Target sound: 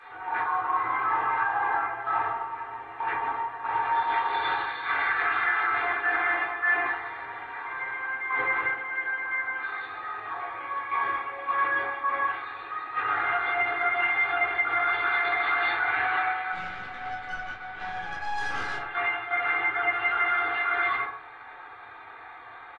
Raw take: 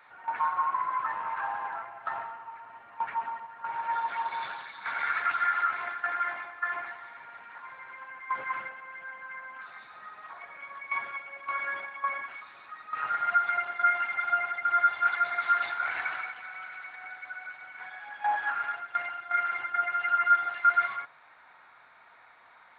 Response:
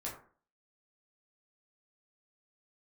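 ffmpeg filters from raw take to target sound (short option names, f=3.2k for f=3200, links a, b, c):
-filter_complex "[0:a]aecho=1:1:2.5:0.85,alimiter=level_in=2.5dB:limit=-24dB:level=0:latency=1:release=40,volume=-2.5dB,asettb=1/sr,asplit=3[a][b][c];[a]atrim=end=16.524[d];[b]atrim=start=16.52:end=18.82,asetpts=PTS-STARTPTS,afade=t=in:d=0.004:c=qsin,afade=t=out:st=2.296:d=0.004:c=qsin,aeval=exprs='(tanh(63.1*val(0)+0.75)-tanh(0.75))/63.1':c=same[e];[c]atrim=start=18.816[f];[d][e]acrossfade=d=0.004:c1=hsin:c2=qsin[g];[g][f]acrossfade=d=0.004:c1=qsin:c2=hsin[h];[1:a]atrim=start_sample=2205[i];[h][i]afir=irnorm=-1:irlink=0,volume=9dB" -ar 22050 -c:a aac -b:a 32k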